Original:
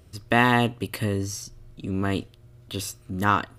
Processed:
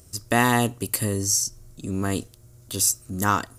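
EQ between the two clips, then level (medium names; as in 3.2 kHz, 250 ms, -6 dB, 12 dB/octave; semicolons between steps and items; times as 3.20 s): resonant high shelf 4.7 kHz +13 dB, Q 1.5; 0.0 dB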